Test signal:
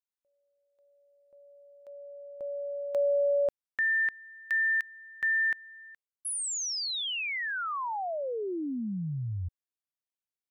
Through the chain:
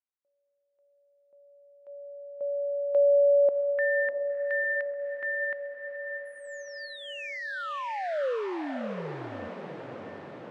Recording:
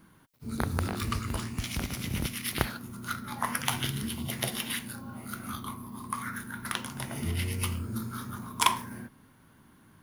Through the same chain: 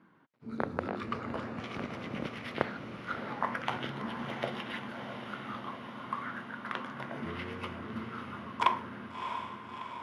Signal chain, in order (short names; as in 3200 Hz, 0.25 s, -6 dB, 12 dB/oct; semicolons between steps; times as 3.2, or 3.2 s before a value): dynamic EQ 540 Hz, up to +7 dB, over -49 dBFS, Q 2.3; BPF 210–2100 Hz; on a send: diffused feedback echo 0.662 s, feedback 69%, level -7.5 dB; on the sum: gain -1.5 dB